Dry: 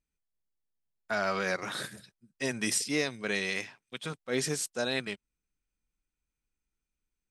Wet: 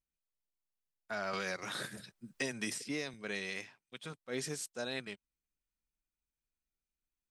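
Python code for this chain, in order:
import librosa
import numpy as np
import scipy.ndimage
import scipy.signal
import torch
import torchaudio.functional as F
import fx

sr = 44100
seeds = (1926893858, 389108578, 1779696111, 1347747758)

y = fx.band_squash(x, sr, depth_pct=100, at=(1.33, 3.14))
y = y * 10.0 ** (-8.0 / 20.0)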